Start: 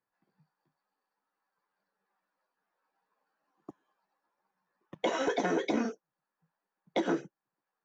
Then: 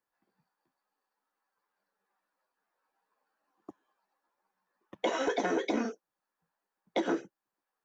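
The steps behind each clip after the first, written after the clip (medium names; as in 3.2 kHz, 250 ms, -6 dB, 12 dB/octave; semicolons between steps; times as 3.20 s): peaking EQ 150 Hz -14 dB 0.4 oct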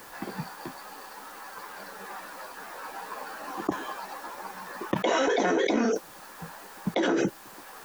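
level flattener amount 100%; trim +2 dB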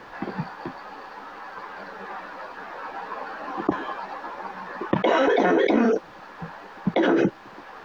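distance through air 250 m; trim +6 dB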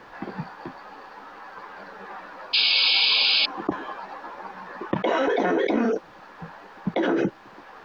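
painted sound noise, 2.53–3.46 s, 2.2–5.1 kHz -17 dBFS; trim -3 dB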